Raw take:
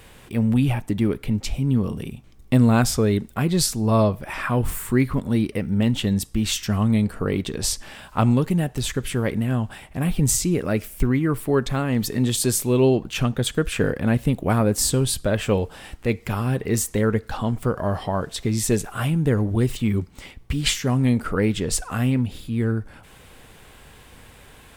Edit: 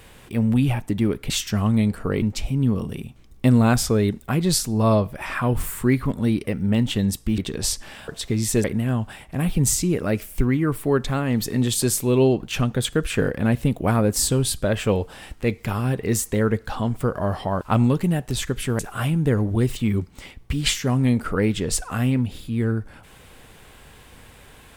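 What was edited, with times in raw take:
0:06.46–0:07.38: move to 0:01.30
0:08.08–0:09.26: swap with 0:18.23–0:18.79

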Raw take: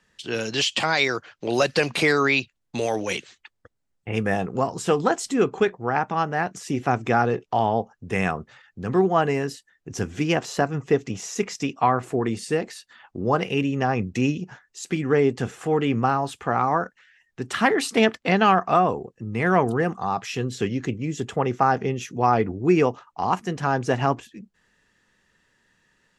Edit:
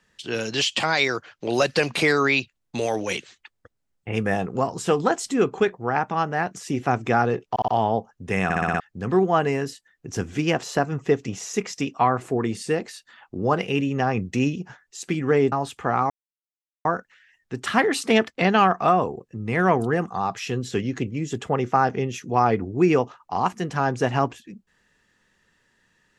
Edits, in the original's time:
0:07.50: stutter 0.06 s, 4 plays
0:08.26: stutter in place 0.06 s, 6 plays
0:15.34–0:16.14: remove
0:16.72: splice in silence 0.75 s

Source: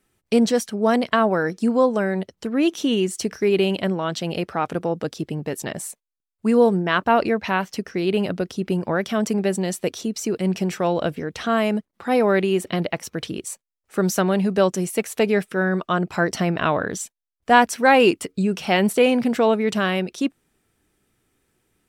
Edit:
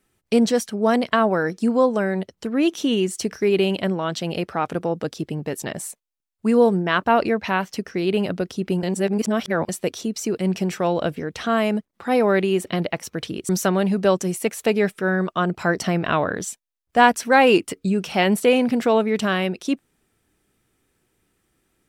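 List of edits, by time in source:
0:08.83–0:09.69: reverse
0:13.49–0:14.02: remove

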